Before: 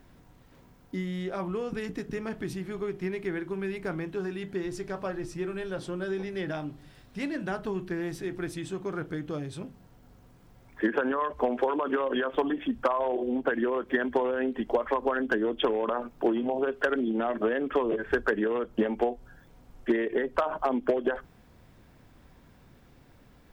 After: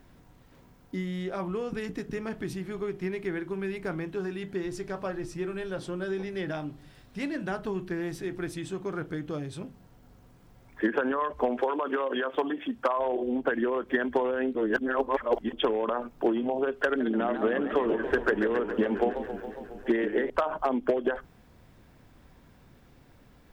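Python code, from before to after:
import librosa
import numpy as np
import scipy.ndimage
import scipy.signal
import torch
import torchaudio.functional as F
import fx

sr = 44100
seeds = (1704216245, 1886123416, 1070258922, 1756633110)

y = fx.highpass(x, sr, hz=260.0, slope=6, at=(11.61, 12.97))
y = fx.echo_warbled(y, sr, ms=138, feedback_pct=75, rate_hz=2.8, cents=183, wet_db=-10, at=(16.86, 20.3))
y = fx.edit(y, sr, fx.reverse_span(start_s=14.55, length_s=0.98), tone=tone)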